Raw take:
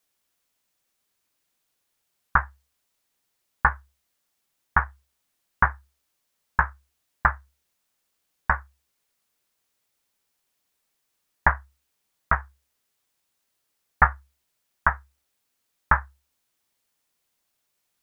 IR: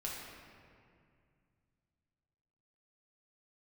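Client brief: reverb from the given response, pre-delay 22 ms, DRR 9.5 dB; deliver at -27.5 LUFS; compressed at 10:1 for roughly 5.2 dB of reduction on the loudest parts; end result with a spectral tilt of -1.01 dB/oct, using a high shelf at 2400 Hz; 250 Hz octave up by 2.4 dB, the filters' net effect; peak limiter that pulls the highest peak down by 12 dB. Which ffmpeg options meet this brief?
-filter_complex "[0:a]equalizer=f=250:t=o:g=4.5,highshelf=f=2.4k:g=-5.5,acompressor=threshold=-22dB:ratio=10,alimiter=limit=-18dB:level=0:latency=1,asplit=2[a][b];[1:a]atrim=start_sample=2205,adelay=22[c];[b][c]afir=irnorm=-1:irlink=0,volume=-10.5dB[d];[a][d]amix=inputs=2:normalize=0,volume=14dB"

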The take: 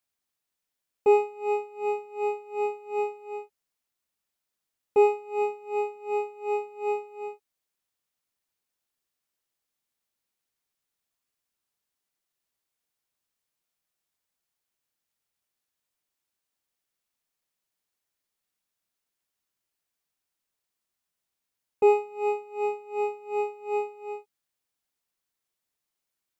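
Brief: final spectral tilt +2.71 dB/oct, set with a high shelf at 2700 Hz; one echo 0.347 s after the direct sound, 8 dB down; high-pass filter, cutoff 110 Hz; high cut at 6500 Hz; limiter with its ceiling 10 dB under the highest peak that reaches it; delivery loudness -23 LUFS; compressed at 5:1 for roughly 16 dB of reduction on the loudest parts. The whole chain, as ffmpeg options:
-af "highpass=110,lowpass=6.5k,highshelf=f=2.7k:g=-6,acompressor=threshold=-34dB:ratio=5,alimiter=level_in=8dB:limit=-24dB:level=0:latency=1,volume=-8dB,aecho=1:1:347:0.398,volume=16.5dB"

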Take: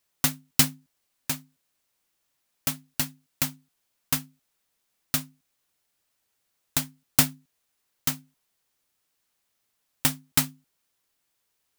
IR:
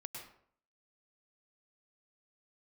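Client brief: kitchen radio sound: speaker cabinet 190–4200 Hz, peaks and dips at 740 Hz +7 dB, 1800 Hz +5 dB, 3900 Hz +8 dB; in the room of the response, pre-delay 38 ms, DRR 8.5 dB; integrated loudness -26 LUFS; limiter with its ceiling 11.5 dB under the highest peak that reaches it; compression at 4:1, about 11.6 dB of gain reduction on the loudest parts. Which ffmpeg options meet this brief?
-filter_complex "[0:a]acompressor=threshold=-27dB:ratio=4,alimiter=limit=-16dB:level=0:latency=1,asplit=2[a][b];[1:a]atrim=start_sample=2205,adelay=38[c];[b][c]afir=irnorm=-1:irlink=0,volume=-5.5dB[d];[a][d]amix=inputs=2:normalize=0,highpass=190,equalizer=f=740:t=q:w=4:g=7,equalizer=f=1.8k:t=q:w=4:g=5,equalizer=f=3.9k:t=q:w=4:g=8,lowpass=f=4.2k:w=0.5412,lowpass=f=4.2k:w=1.3066,volume=17.5dB"

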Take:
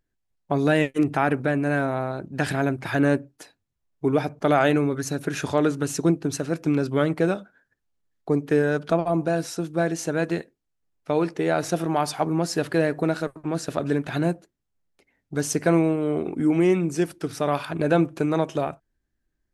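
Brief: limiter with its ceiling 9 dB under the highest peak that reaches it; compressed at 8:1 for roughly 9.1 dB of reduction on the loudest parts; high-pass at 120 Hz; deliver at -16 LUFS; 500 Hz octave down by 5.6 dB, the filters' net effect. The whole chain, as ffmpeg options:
-af "highpass=120,equalizer=f=500:t=o:g=-7.5,acompressor=threshold=-27dB:ratio=8,volume=18.5dB,alimiter=limit=-3.5dB:level=0:latency=1"

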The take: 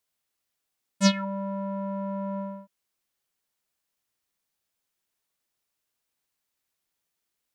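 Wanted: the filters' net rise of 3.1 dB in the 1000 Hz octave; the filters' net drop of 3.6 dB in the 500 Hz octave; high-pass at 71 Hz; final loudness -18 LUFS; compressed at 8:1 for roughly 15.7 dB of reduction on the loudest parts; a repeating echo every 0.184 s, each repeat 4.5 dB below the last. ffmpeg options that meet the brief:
-af "highpass=71,equalizer=f=500:t=o:g=-6,equalizer=f=1k:t=o:g=4.5,acompressor=threshold=-32dB:ratio=8,aecho=1:1:184|368|552|736|920|1104|1288|1472|1656:0.596|0.357|0.214|0.129|0.0772|0.0463|0.0278|0.0167|0.01,volume=16dB"

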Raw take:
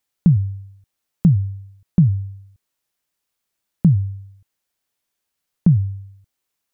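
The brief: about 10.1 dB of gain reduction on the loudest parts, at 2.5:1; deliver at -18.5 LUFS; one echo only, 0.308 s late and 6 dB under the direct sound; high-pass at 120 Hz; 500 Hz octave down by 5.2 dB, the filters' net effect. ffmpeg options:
-af "highpass=120,equalizer=f=500:t=o:g=-7.5,acompressor=threshold=-26dB:ratio=2.5,aecho=1:1:308:0.501,volume=12.5dB"

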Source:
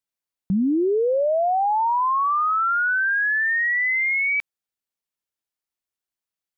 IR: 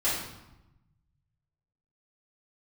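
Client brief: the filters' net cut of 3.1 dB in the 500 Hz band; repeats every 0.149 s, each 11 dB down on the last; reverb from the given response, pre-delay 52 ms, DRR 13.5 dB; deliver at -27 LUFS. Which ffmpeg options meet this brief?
-filter_complex "[0:a]equalizer=f=500:t=o:g=-4,aecho=1:1:149|298|447:0.282|0.0789|0.0221,asplit=2[a][b];[1:a]atrim=start_sample=2205,adelay=52[c];[b][c]afir=irnorm=-1:irlink=0,volume=-24dB[d];[a][d]amix=inputs=2:normalize=0,volume=-6.5dB"

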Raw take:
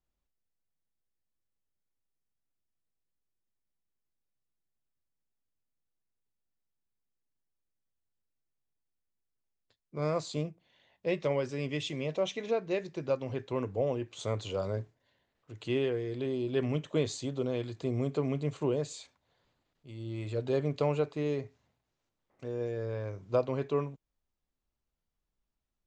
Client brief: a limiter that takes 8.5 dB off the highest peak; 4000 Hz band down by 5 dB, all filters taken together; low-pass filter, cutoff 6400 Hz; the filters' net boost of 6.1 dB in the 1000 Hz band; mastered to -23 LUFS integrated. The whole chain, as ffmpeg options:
-af "lowpass=6.4k,equalizer=f=1k:t=o:g=8,equalizer=f=4k:t=o:g=-6.5,volume=11.5dB,alimiter=limit=-10.5dB:level=0:latency=1"

